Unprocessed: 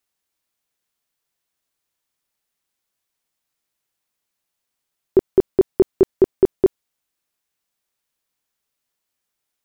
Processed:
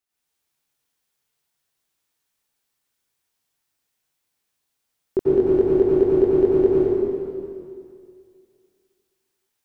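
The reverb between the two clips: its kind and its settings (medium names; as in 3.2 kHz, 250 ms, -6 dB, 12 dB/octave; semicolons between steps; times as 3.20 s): plate-style reverb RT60 2.3 s, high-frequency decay 1×, pre-delay 80 ms, DRR -9.5 dB; trim -7.5 dB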